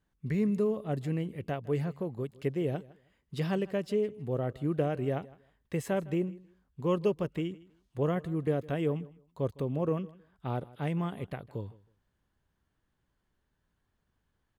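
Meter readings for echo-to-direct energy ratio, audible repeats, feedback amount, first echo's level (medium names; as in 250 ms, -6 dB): -21.0 dB, 2, 20%, -21.0 dB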